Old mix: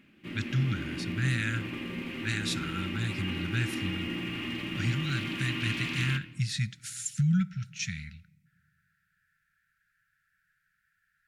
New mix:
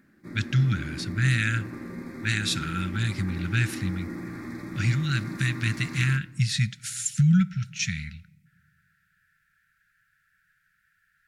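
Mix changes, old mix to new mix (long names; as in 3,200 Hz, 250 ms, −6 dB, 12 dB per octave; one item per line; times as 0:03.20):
speech +6.0 dB
background: add Butterworth band-reject 2,900 Hz, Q 1.1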